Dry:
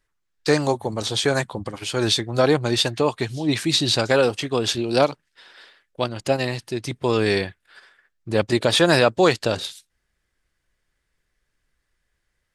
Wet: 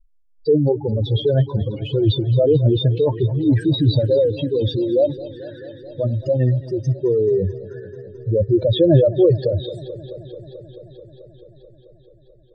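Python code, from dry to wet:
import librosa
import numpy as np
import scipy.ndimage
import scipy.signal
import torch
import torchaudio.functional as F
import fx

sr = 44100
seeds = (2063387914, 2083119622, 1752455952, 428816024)

y = fx.spec_expand(x, sr, power=4.0)
y = fx.riaa(y, sr, side='playback')
y = fx.echo_warbled(y, sr, ms=218, feedback_pct=80, rate_hz=2.8, cents=76, wet_db=-18)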